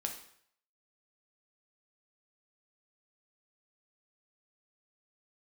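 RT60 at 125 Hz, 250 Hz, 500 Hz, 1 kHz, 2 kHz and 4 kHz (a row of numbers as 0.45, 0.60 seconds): 0.65, 0.60, 0.65, 0.65, 0.65, 0.60 seconds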